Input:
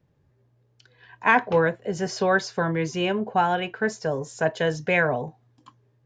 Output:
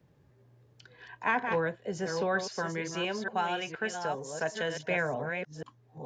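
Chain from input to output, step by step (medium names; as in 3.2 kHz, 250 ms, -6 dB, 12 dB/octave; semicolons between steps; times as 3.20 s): chunks repeated in reverse 469 ms, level -7 dB; 2.43–4.90 s: tilt EQ +2 dB/octave; three bands compressed up and down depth 40%; trim -8.5 dB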